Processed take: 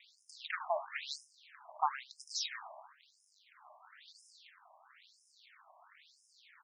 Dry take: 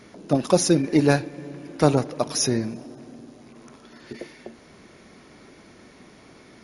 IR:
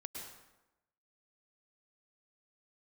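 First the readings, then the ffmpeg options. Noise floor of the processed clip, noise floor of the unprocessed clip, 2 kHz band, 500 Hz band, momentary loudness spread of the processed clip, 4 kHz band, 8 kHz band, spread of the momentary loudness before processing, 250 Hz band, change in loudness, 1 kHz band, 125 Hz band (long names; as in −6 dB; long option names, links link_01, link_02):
−72 dBFS, −50 dBFS, −10.0 dB, −22.0 dB, 22 LU, −11.0 dB, −19.5 dB, 20 LU, below −40 dB, −17.5 dB, −8.0 dB, below −40 dB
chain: -filter_complex "[0:a]highshelf=frequency=5900:gain=-9.5,acontrast=46,aeval=exprs='max(val(0),0)':channel_layout=same,aexciter=amount=1.3:drive=5.6:freq=3200,asplit=2[link_01][link_02];[link_02]aecho=0:1:76:0.188[link_03];[link_01][link_03]amix=inputs=2:normalize=0,afftfilt=real='re*between(b*sr/1024,820*pow(7200/820,0.5+0.5*sin(2*PI*1*pts/sr))/1.41,820*pow(7200/820,0.5+0.5*sin(2*PI*1*pts/sr))*1.41)':imag='im*between(b*sr/1024,820*pow(7200/820,0.5+0.5*sin(2*PI*1*pts/sr))/1.41,820*pow(7200/820,0.5+0.5*sin(2*PI*1*pts/sr))*1.41)':win_size=1024:overlap=0.75,volume=-5dB"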